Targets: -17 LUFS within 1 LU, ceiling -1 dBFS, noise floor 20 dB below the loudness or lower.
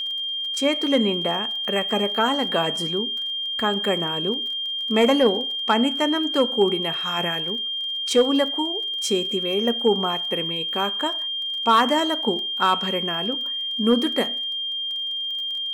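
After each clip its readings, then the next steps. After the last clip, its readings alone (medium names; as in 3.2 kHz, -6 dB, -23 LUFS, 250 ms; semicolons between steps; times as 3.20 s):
tick rate 26 per s; steady tone 3.2 kHz; tone level -25 dBFS; loudness -22.0 LUFS; peak level -8.0 dBFS; loudness target -17.0 LUFS
-> de-click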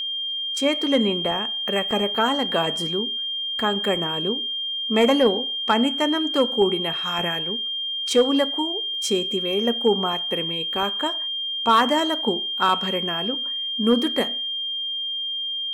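tick rate 0.32 per s; steady tone 3.2 kHz; tone level -25 dBFS
-> band-stop 3.2 kHz, Q 30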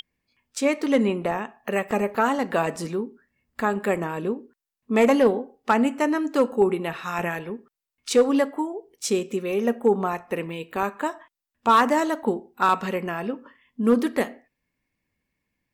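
steady tone not found; loudness -24.0 LUFS; peak level -9.0 dBFS; loudness target -17.0 LUFS
-> trim +7 dB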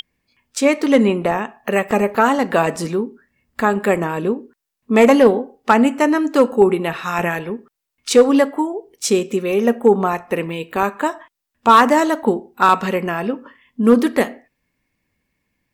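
loudness -17.0 LUFS; peak level -2.0 dBFS; noise floor -79 dBFS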